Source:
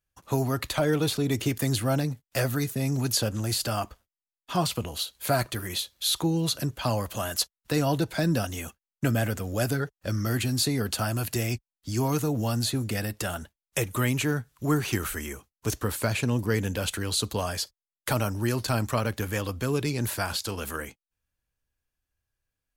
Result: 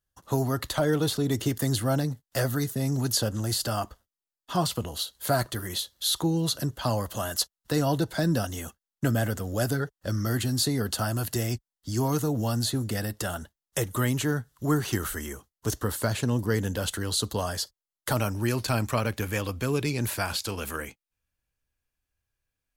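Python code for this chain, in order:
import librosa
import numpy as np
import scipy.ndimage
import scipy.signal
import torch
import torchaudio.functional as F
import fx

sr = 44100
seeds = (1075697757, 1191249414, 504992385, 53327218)

y = fx.peak_eq(x, sr, hz=2400.0, db=fx.steps((0.0, -13.0), (18.17, 3.5)), octaves=0.23)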